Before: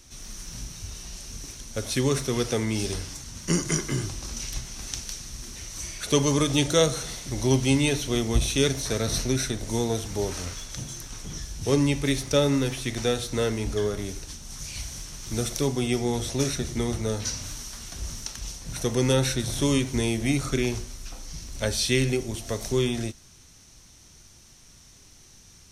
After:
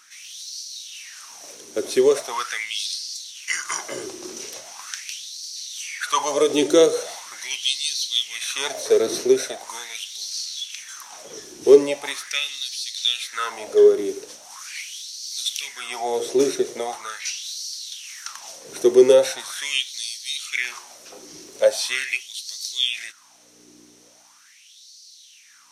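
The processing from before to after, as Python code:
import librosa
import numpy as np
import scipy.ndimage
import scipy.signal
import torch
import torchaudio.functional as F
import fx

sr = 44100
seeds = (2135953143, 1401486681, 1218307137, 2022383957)

y = fx.add_hum(x, sr, base_hz=60, snr_db=17)
y = fx.filter_lfo_highpass(y, sr, shape='sine', hz=0.41, low_hz=360.0, high_hz=4500.0, q=6.6)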